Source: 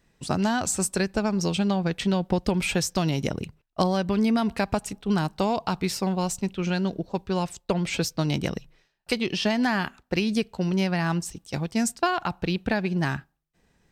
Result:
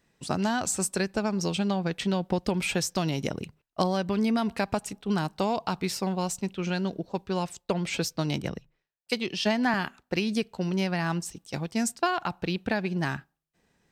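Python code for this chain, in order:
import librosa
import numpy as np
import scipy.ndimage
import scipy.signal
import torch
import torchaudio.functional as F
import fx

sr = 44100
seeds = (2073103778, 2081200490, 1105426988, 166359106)

y = fx.low_shelf(x, sr, hz=75.0, db=-11.0)
y = fx.band_widen(y, sr, depth_pct=100, at=(8.42, 9.74))
y = y * librosa.db_to_amplitude(-2.0)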